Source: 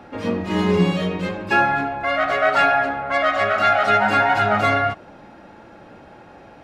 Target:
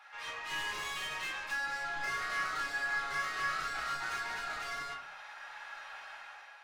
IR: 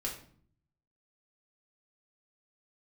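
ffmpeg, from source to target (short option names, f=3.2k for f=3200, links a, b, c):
-filter_complex "[0:a]highpass=f=1.1k:w=0.5412,highpass=f=1.1k:w=1.3066,dynaudnorm=f=160:g=7:m=10dB,alimiter=limit=-14dB:level=0:latency=1:release=163,acompressor=threshold=-25dB:ratio=5,asoftclip=type=tanh:threshold=-33dB,asettb=1/sr,asplit=3[a][b][c];[a]atrim=end=2.004[d];[b]atrim=start=2:end=4.2,asetpts=PTS-STARTPTS,afade=t=in:d=0.004:c=qsin,afade=t=out:st=2.196:d=0.004:c=qsin,asplit=2[e][f];[f]adelay=34,volume=-3dB[g];[e][g]amix=inputs=2:normalize=0,atrim=end_sample=97020[h];[c]atrim=start=4.196[i];[d][h]acrossfade=d=0.004:c1=hsin:c2=qsin[j];[j][i]acrossfade=d=0.004:c1=qsin:c2=hsin[k];[1:a]atrim=start_sample=2205,asetrate=57330,aresample=44100[l];[k][l]afir=irnorm=-1:irlink=0,volume=-2.5dB"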